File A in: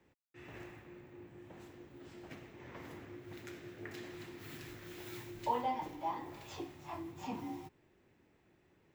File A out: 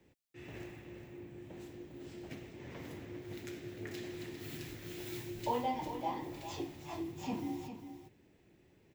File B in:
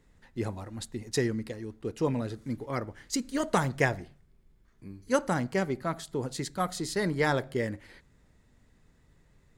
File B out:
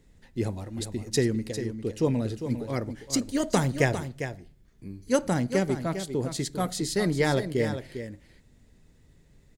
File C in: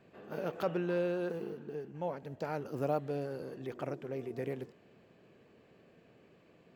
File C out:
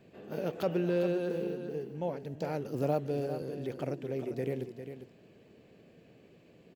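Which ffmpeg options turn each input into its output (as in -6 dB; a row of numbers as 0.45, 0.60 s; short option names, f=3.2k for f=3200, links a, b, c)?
-af "equalizer=f=1.2k:w=1:g=-8.5,aecho=1:1:401:0.335,volume=4.5dB"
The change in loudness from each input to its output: +2.0, +3.0, +3.0 LU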